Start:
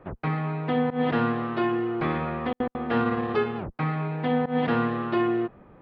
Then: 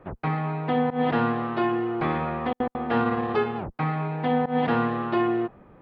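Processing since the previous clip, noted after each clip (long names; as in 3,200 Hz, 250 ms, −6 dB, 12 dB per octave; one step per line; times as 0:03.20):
dynamic equaliser 820 Hz, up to +5 dB, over −44 dBFS, Q 2.5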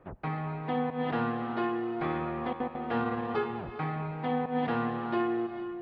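reverb whose tail is shaped and stops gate 490 ms rising, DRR 9 dB
level −7 dB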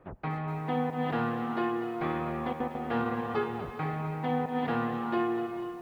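feedback echo at a low word length 244 ms, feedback 55%, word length 9 bits, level −12.5 dB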